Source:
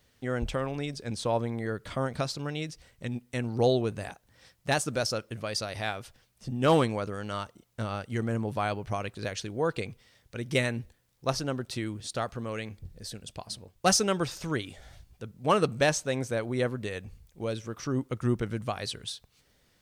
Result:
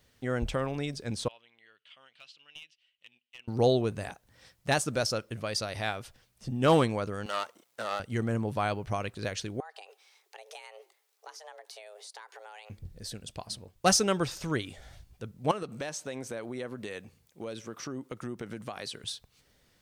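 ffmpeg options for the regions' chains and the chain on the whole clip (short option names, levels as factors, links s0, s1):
-filter_complex "[0:a]asettb=1/sr,asplit=3[s0][s1][s2];[s0]atrim=end=1.284[s3];[s1]atrim=start=1.28:end=3.48,asetpts=PTS-STARTPTS,afade=t=in:d=0.004:c=qsin,afade=t=out:st=2.196:d=0.004:c=qsin,bandpass=f=2900:t=q:w=8,aeval=exprs='clip(val(0),-1,0.00944)':c=same[s4];[s2]atrim=start=3.476[s5];[s3][s4]acrossfade=d=0.004:c1=hsin:c2=qsin[s6];[s6][s5]acrossfade=d=0.004:c1=qsin:c2=hsin,asettb=1/sr,asplit=3[s7][s8][s9];[s7]atrim=end=7.264[s10];[s8]atrim=start=7.26:end=8,asetpts=PTS-STARTPTS,afade=t=in:d=0.004:c=qsin,afade=t=out:st=0.736:d=0.004:c=qsin,aeval=exprs='if(lt(val(0),0),0.251*val(0),val(0))':c=same,highpass=410,acontrast=65[s11];[s9]atrim=start=7.996[s12];[s10][s11]acrossfade=d=0.004:c1=hsin:c2=qsin[s13];[s13][s12]acrossfade=d=0.004:c1=qsin:c2=hsin,asettb=1/sr,asplit=3[s14][s15][s16];[s14]atrim=end=9.604[s17];[s15]atrim=start=9.6:end=12.7,asetpts=PTS-STARTPTS,afade=t=in:d=0.004:c=qsin,afade=t=out:st=3.096:d=0.004:c=qsin,highpass=f=550:p=1,acompressor=threshold=0.00631:ratio=6:attack=3.2:release=140:knee=1:detection=peak,afreqshift=310[s18];[s16]atrim=start=12.696[s19];[s17][s18]acrossfade=d=0.004:c1=hsin:c2=qsin[s20];[s20][s19]acrossfade=d=0.004:c1=qsin:c2=hsin,asettb=1/sr,asplit=3[s21][s22][s23];[s21]atrim=end=15.514[s24];[s22]atrim=start=15.51:end=19.04,asetpts=PTS-STARTPTS,afade=t=in:d=0.004:c=qsin,afade=t=out:st=3.526:d=0.004:c=qsin,highpass=180,acompressor=threshold=0.02:ratio=4:attack=3.2:release=140:knee=1:detection=peak[s25];[s23]atrim=start=19.036[s26];[s24][s25]acrossfade=d=0.004:c1=hsin:c2=qsin[s27];[s27][s26]acrossfade=d=0.004:c1=qsin:c2=hsin"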